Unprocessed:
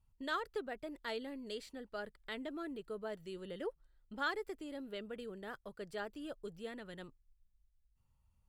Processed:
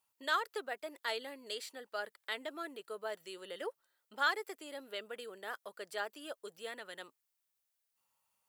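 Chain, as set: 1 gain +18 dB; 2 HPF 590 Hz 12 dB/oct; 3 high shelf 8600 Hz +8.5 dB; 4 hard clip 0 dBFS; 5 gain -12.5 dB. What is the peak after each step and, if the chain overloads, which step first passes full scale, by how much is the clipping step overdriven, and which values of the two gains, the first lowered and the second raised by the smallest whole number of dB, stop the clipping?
-7.0, -5.5, -5.0, -5.0, -17.5 dBFS; no overload

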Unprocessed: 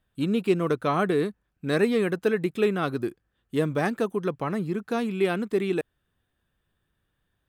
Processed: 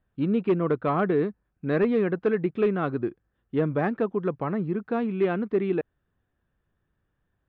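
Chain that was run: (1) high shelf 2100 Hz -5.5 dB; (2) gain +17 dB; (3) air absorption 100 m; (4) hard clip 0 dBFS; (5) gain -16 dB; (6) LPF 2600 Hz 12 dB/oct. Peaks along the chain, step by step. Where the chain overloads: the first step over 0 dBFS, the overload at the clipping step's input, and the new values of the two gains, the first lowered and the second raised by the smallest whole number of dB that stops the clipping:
-11.0, +6.0, +5.5, 0.0, -16.0, -15.5 dBFS; step 2, 5.5 dB; step 2 +11 dB, step 5 -10 dB

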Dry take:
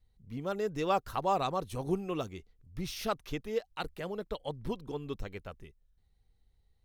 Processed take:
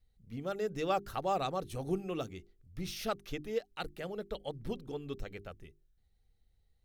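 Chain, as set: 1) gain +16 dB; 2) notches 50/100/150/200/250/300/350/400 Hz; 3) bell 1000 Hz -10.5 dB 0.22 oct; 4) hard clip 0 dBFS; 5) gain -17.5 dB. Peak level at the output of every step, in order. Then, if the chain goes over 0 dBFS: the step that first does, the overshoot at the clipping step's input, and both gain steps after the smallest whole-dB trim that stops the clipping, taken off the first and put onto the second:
-1.0, -0.5, -2.5, -2.5, -20.0 dBFS; no overload

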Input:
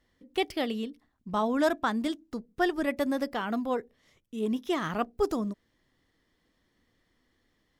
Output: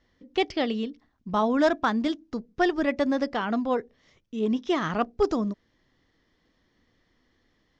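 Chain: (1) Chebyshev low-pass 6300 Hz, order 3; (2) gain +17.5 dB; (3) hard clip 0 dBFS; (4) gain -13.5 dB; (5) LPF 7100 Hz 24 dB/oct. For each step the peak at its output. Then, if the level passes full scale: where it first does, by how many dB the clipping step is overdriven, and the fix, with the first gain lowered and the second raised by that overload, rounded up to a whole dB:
-13.0, +4.5, 0.0, -13.5, -13.0 dBFS; step 2, 4.5 dB; step 2 +12.5 dB, step 4 -8.5 dB

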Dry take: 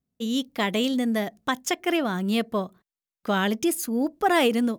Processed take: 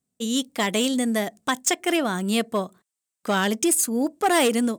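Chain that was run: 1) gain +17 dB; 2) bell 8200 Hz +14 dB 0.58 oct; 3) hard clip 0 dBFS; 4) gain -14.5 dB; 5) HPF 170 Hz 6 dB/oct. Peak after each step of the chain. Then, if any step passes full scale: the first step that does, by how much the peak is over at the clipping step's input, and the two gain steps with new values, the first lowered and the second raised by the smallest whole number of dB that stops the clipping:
+6.5, +9.5, 0.0, -14.5, -11.0 dBFS; step 1, 9.5 dB; step 1 +7 dB, step 4 -4.5 dB

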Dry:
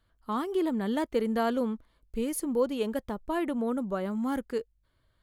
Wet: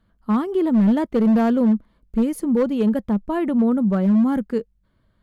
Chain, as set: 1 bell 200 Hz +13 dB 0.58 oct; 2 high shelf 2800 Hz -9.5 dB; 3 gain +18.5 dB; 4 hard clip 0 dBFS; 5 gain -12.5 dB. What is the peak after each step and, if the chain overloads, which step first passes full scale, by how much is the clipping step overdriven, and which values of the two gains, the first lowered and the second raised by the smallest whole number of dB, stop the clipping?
-13.0, -13.0, +5.5, 0.0, -12.5 dBFS; step 3, 5.5 dB; step 3 +12.5 dB, step 5 -6.5 dB

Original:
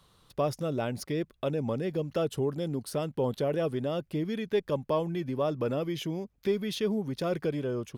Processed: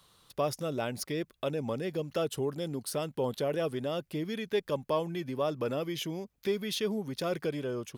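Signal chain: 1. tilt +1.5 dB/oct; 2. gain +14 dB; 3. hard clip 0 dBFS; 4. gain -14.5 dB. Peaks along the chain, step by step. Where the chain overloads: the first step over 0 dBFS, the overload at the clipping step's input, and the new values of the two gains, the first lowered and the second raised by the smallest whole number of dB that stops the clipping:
-17.0, -3.0, -3.0, -17.5 dBFS; no overload

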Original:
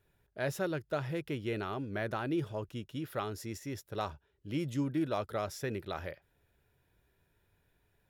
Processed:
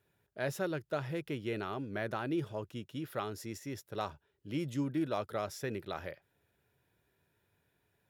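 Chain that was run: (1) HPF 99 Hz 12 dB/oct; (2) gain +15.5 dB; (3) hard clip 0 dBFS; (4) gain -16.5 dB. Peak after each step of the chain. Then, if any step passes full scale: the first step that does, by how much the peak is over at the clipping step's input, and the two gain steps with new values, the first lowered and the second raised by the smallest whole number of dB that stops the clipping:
-19.5, -4.0, -4.0, -20.5 dBFS; no overload

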